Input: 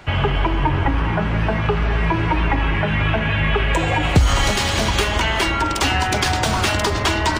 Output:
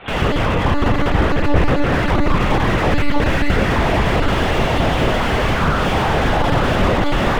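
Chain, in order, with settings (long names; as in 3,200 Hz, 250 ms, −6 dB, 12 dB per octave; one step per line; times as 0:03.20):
parametric band 400 Hz +4.5 dB 0.31 octaves
automatic gain control gain up to 11.5 dB
in parallel at −2.5 dB: brickwall limiter −13 dBFS, peak gain reduction 11.5 dB
on the sum: cochlear-implant simulation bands 16
soft clipping −16 dBFS, distortion −8 dB
feedback echo with a high-pass in the loop 580 ms, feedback 49%, high-pass 290 Hz, level −11.5 dB
on a send at −1 dB: convolution reverb RT60 0.60 s, pre-delay 28 ms
on the sum: one-pitch LPC vocoder at 8 kHz 290 Hz
slew-rate limiting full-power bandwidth 130 Hz
level +2 dB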